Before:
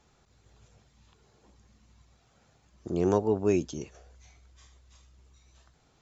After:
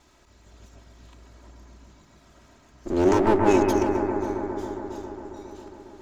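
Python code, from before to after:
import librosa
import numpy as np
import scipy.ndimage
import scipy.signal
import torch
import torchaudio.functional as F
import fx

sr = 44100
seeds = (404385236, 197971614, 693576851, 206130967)

y = fx.lower_of_two(x, sr, delay_ms=3.1)
y = fx.echo_bbd(y, sr, ms=136, stages=2048, feedback_pct=84, wet_db=-5)
y = y * 10.0 ** (8.5 / 20.0)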